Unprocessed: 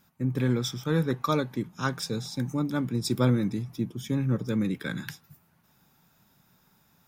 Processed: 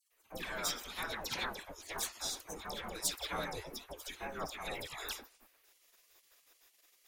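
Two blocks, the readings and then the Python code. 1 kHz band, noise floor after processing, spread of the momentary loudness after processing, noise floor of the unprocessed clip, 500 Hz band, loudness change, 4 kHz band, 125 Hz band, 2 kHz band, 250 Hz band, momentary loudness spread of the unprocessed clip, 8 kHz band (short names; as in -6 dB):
-6.5 dB, -71 dBFS, 9 LU, -65 dBFS, -13.0 dB, -11.0 dB, -2.0 dB, -27.0 dB, -4.0 dB, -24.0 dB, 8 LU, +2.0 dB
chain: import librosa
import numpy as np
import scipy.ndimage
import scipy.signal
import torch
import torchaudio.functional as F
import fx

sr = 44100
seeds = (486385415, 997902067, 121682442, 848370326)

y = fx.diode_clip(x, sr, knee_db=-27.5)
y = fx.dispersion(y, sr, late='lows', ms=118.0, hz=1600.0)
y = fx.spec_gate(y, sr, threshold_db=-20, keep='weak')
y = y * librosa.db_to_amplitude(5.0)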